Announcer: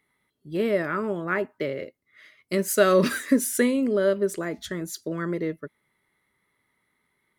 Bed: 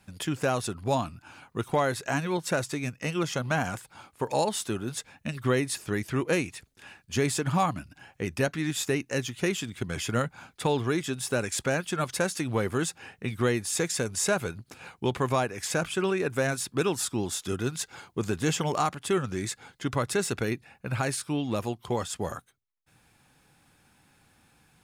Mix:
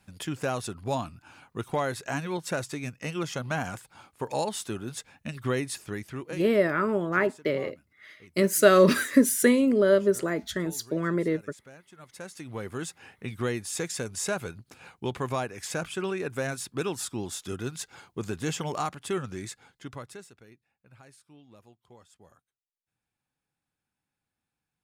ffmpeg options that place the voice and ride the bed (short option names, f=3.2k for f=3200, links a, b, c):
-filter_complex "[0:a]adelay=5850,volume=1.5dB[a];[1:a]volume=16dB,afade=t=out:st=5.69:d=0.89:silence=0.1,afade=t=in:st=11.97:d=1.19:silence=0.112202,afade=t=out:st=19.21:d=1.11:silence=0.0891251[b];[a][b]amix=inputs=2:normalize=0"